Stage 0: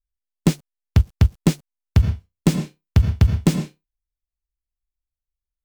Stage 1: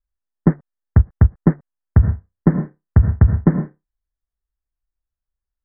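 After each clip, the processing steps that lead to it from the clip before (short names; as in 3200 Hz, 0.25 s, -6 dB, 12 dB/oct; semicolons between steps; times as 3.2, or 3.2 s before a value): steep low-pass 1900 Hz 96 dB/oct; gain +3 dB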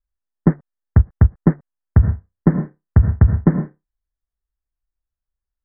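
nothing audible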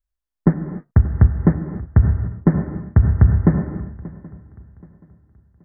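swung echo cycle 0.777 s, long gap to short 3:1, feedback 30%, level -19.5 dB; non-linear reverb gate 0.32 s flat, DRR 8 dB; gain -1 dB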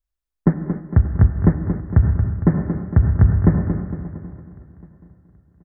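feedback echo 0.229 s, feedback 48%, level -8.5 dB; gain -1 dB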